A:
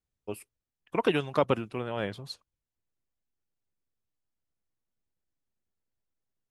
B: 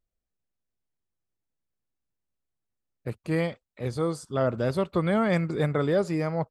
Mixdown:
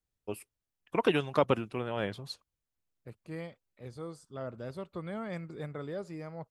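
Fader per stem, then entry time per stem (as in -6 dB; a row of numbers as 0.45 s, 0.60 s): -1.0 dB, -14.5 dB; 0.00 s, 0.00 s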